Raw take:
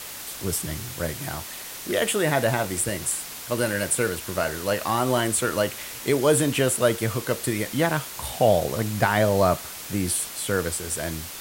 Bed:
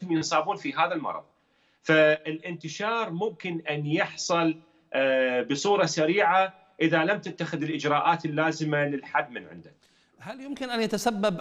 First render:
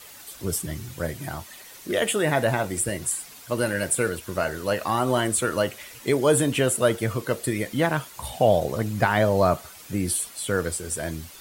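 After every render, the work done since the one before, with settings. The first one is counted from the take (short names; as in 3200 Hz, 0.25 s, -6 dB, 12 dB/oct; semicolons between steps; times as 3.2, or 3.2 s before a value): denoiser 10 dB, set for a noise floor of -37 dBFS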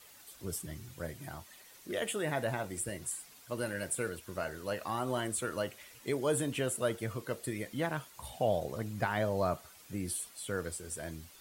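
gain -11.5 dB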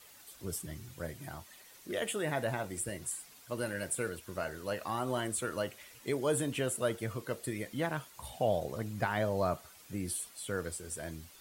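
nothing audible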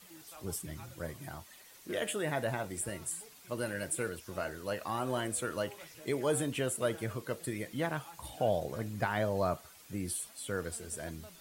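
add bed -30 dB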